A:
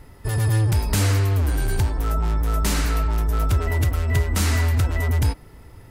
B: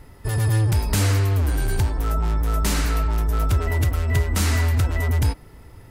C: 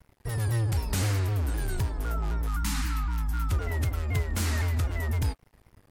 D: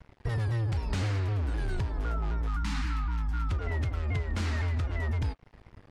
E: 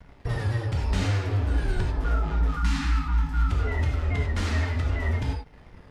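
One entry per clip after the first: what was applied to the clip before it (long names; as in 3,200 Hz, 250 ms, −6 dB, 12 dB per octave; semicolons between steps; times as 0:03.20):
no processing that can be heard
time-frequency box erased 0:02.48–0:03.51, 320–770 Hz; dead-zone distortion −44 dBFS; pitch modulation by a square or saw wave saw down 3.9 Hz, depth 160 cents; level −7 dB
low-pass filter 4,200 Hz 12 dB per octave; downward compressor 5 to 1, threshold −33 dBFS, peak gain reduction 10 dB; level +5.5 dB
reverb whose tail is shaped and stops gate 120 ms flat, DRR −0.5 dB; level +2 dB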